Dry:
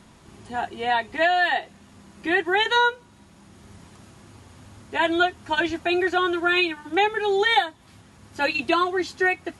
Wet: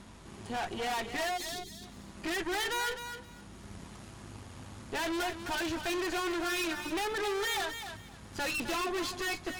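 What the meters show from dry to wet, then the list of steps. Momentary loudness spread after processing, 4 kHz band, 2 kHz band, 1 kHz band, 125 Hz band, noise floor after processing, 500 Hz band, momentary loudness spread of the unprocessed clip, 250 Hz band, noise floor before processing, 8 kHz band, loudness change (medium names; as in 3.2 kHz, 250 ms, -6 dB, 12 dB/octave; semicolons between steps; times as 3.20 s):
16 LU, -9.0 dB, -12.0 dB, -12.5 dB, -2.0 dB, -51 dBFS, -11.5 dB, 8 LU, -9.0 dB, -52 dBFS, +5.5 dB, -11.0 dB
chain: valve stage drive 36 dB, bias 0.8; spectral selection erased 1.37–1.82 s, 440–3200 Hz; hum 50 Hz, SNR 22 dB; on a send: thinning echo 260 ms, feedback 20%, level -8.5 dB; on the sum: trim +4 dB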